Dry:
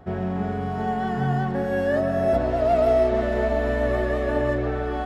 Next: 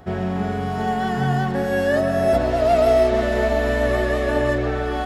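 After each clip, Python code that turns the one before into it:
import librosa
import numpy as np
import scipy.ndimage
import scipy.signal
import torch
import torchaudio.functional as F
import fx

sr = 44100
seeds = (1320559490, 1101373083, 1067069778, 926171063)

y = fx.high_shelf(x, sr, hz=2700.0, db=10.5)
y = F.gain(torch.from_numpy(y), 2.5).numpy()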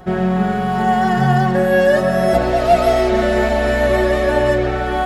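y = x + 0.73 * np.pad(x, (int(5.5 * sr / 1000.0), 0))[:len(x)]
y = F.gain(torch.from_numpy(y), 3.5).numpy()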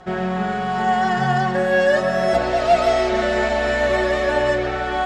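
y = scipy.signal.sosfilt(scipy.signal.butter(4, 8000.0, 'lowpass', fs=sr, output='sos'), x)
y = fx.low_shelf(y, sr, hz=450.0, db=-9.0)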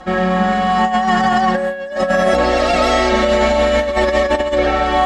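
y = x + 0.83 * np.pad(x, (int(3.7 * sr / 1000.0), 0))[:len(x)]
y = fx.over_compress(y, sr, threshold_db=-18.0, ratio=-0.5)
y = F.gain(torch.from_numpy(y), 4.0).numpy()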